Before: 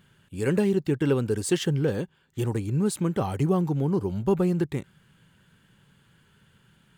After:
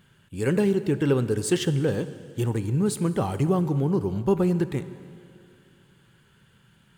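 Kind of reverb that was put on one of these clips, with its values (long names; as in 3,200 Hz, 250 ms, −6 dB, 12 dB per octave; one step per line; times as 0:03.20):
dense smooth reverb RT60 2.5 s, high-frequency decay 0.85×, DRR 12.5 dB
level +1 dB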